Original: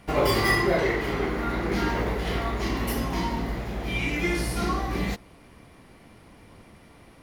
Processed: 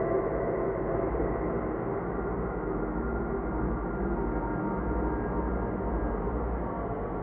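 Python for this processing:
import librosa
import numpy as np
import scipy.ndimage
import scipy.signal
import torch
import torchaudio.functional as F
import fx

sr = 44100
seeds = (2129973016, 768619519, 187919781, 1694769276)

y = fx.paulstretch(x, sr, seeds[0], factor=4.4, window_s=1.0, from_s=0.77)
y = scipy.signal.sosfilt(scipy.signal.butter(4, 1300.0, 'lowpass', fs=sr, output='sos'), y)
y = y + 10.0 ** (-5.5 / 20.0) * np.pad(y, (int(881 * sr / 1000.0), 0))[:len(y)]
y = y * librosa.db_to_amplitude(-4.5)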